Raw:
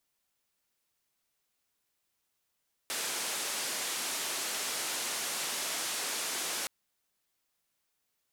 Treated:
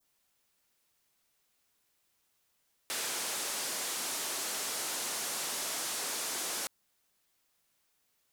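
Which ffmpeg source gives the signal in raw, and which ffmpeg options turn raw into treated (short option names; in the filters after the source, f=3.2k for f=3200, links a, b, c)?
-f lavfi -i "anoisesrc=c=white:d=3.77:r=44100:seed=1,highpass=f=270,lowpass=f=10000,volume=-26.7dB"
-filter_complex "[0:a]adynamicequalizer=threshold=0.00316:dfrequency=2500:dqfactor=0.85:tfrequency=2500:tqfactor=0.85:attack=5:release=100:ratio=0.375:range=2:mode=cutabove:tftype=bell,asplit=2[a][b];[b]alimiter=level_in=13dB:limit=-24dB:level=0:latency=1:release=25,volume=-13dB,volume=-3dB[c];[a][c]amix=inputs=2:normalize=0,asoftclip=type=tanh:threshold=-29.5dB"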